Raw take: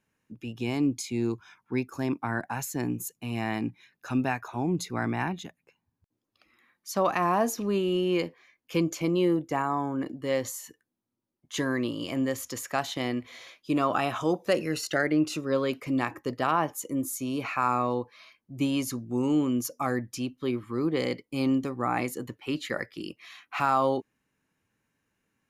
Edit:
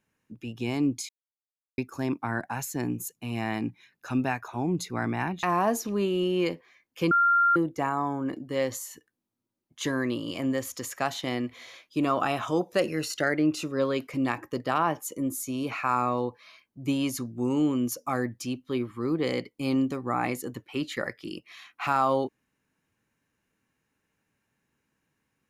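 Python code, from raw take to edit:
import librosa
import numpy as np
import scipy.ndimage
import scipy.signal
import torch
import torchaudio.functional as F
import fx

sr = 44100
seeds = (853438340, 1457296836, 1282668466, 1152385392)

y = fx.edit(x, sr, fx.silence(start_s=1.09, length_s=0.69),
    fx.cut(start_s=5.43, length_s=1.73),
    fx.bleep(start_s=8.84, length_s=0.45, hz=1390.0, db=-18.0), tone=tone)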